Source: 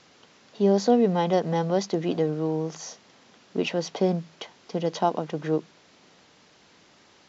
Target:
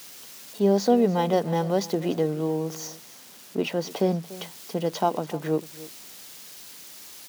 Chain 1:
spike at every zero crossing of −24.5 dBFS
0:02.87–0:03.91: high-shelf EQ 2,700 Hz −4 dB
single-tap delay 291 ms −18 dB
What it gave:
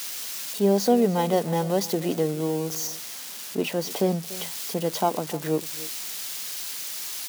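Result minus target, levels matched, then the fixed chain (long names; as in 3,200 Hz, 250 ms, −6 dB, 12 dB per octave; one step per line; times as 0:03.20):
spike at every zero crossing: distortion +11 dB
spike at every zero crossing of −35.5 dBFS
0:02.87–0:03.91: high-shelf EQ 2,700 Hz −4 dB
single-tap delay 291 ms −18 dB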